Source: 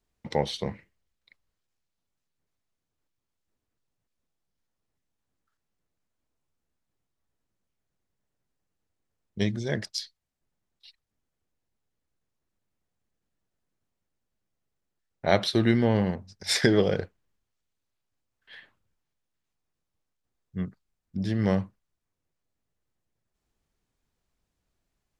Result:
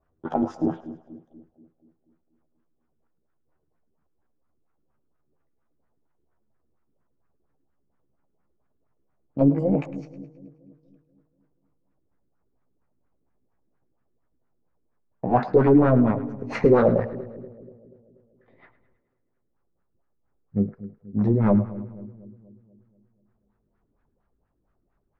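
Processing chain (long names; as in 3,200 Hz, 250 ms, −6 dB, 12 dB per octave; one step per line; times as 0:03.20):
pitch glide at a constant tempo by +8.5 semitones ending unshifted
low-shelf EQ 430 Hz +2 dB
hard clipping −22 dBFS, distortion −7 dB
auto-filter low-pass sine 4.3 Hz 320–1,500 Hz
echo with a time of its own for lows and highs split 510 Hz, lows 241 ms, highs 106 ms, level −15 dB
level +6.5 dB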